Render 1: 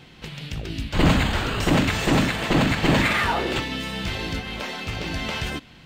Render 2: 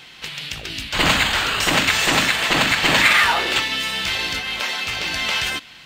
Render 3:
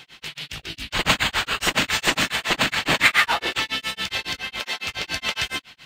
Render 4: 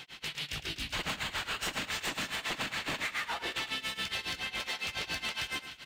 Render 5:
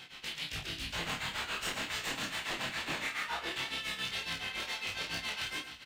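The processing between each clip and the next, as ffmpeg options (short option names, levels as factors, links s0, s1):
-af "tiltshelf=f=650:g=-9.5,volume=1.12"
-af "tremolo=f=7.2:d=1"
-af "acompressor=threshold=0.0398:ratio=6,asoftclip=type=tanh:threshold=0.0501,aecho=1:1:108|300:0.251|0.158,volume=0.794"
-filter_complex "[0:a]flanger=delay=17:depth=5.4:speed=2.1,asplit=2[s0][s1];[s1]adelay=30,volume=0.668[s2];[s0][s2]amix=inputs=2:normalize=0"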